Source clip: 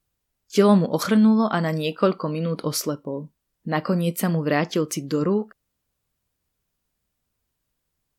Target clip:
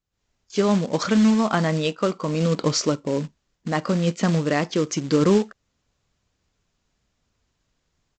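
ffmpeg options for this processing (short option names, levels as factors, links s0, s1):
-af "aresample=16000,acrusher=bits=4:mode=log:mix=0:aa=0.000001,aresample=44100,dynaudnorm=f=110:g=3:m=5.62,volume=0.422"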